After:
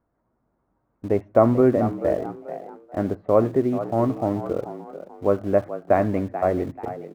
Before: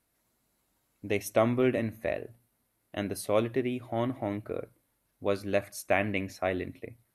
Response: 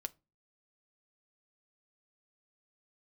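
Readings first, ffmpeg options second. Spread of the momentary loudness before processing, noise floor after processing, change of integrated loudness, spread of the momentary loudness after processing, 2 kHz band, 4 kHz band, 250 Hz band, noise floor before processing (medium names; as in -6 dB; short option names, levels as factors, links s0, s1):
12 LU, -73 dBFS, +8.5 dB, 17 LU, -3.5 dB, no reading, +9.0 dB, -76 dBFS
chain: -filter_complex "[0:a]lowpass=f=1300:w=0.5412,lowpass=f=1300:w=1.3066,asplit=2[s0][s1];[s1]aeval=exprs='val(0)*gte(abs(val(0)),0.01)':c=same,volume=0.376[s2];[s0][s2]amix=inputs=2:normalize=0,asplit=4[s3][s4][s5][s6];[s4]adelay=436,afreqshift=72,volume=0.251[s7];[s5]adelay=872,afreqshift=144,volume=0.0851[s8];[s6]adelay=1308,afreqshift=216,volume=0.0292[s9];[s3][s7][s8][s9]amix=inputs=4:normalize=0,volume=2"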